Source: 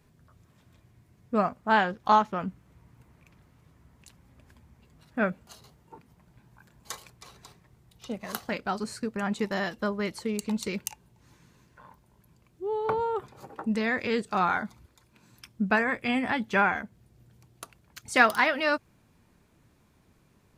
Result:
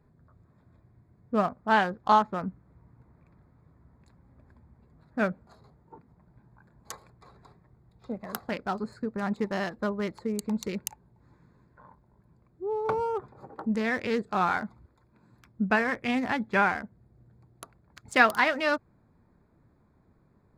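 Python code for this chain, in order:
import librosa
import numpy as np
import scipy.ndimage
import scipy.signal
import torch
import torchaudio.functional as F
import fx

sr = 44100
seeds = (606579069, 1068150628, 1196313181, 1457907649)

y = fx.wiener(x, sr, points=15)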